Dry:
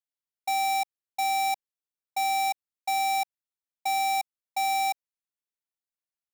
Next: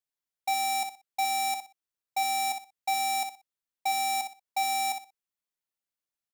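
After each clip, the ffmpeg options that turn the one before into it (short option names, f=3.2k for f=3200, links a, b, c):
-af "aecho=1:1:61|122|183:0.398|0.0916|0.0211"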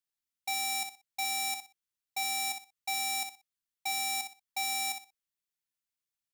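-af "equalizer=f=590:t=o:w=1.6:g=-12"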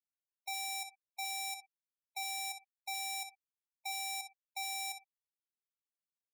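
-af "afftfilt=real='re*gte(hypot(re,im),0.0126)':imag='im*gte(hypot(re,im),0.0126)':win_size=1024:overlap=0.75,volume=-6.5dB"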